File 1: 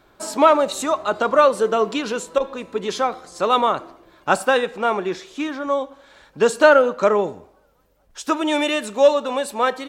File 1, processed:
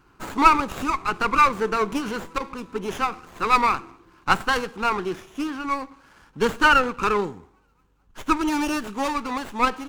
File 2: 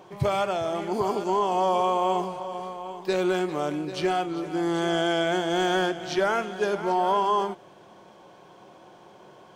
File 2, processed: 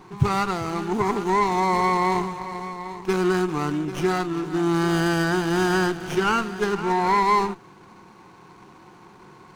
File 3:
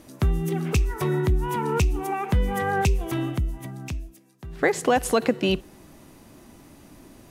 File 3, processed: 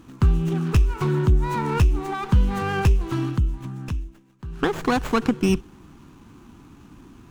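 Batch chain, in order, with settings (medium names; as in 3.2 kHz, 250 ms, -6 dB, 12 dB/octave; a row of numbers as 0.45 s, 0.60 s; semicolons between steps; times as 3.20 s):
Chebyshev shaper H 7 -33 dB, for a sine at -1 dBFS; static phaser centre 3 kHz, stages 8; sliding maximum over 9 samples; normalise loudness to -23 LUFS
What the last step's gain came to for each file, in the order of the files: +3.0 dB, +9.0 dB, +6.0 dB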